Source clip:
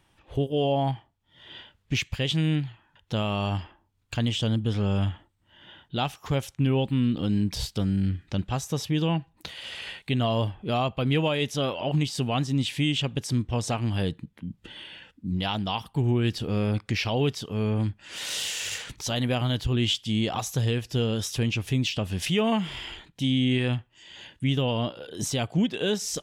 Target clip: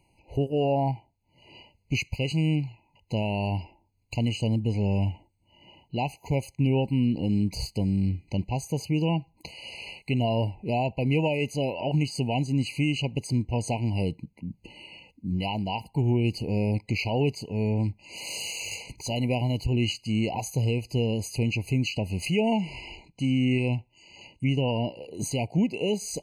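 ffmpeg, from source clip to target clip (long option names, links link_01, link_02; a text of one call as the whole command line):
ffmpeg -i in.wav -filter_complex "[0:a]asettb=1/sr,asplit=3[link_01][link_02][link_03];[link_01]atrim=end=22.364[link_04];[link_02]atrim=start=22.36:end=24.69,asetpts=PTS-STARTPTS,afade=type=in:duration=0.004:curve=qsin,afade=type=out:start_time=2.326:duration=0.004:curve=qsin,lowpass=frequency=10000:width=0.5412,lowpass=frequency=10000:width=1.3066[link_05];[link_03]atrim=start=24.686[link_06];[link_04][link_05]acrossfade=duration=0.004:curve1=hsin:curve2=qsin[link_07];[link_07][link_06]acrossfade=duration=0.004:curve1=qsin:curve2=hsin,afftfilt=real='re*eq(mod(floor(b*sr/1024/1000),2),0)':imag='im*eq(mod(floor(b*sr/1024/1000),2),0)':win_size=1024:overlap=0.75" out.wav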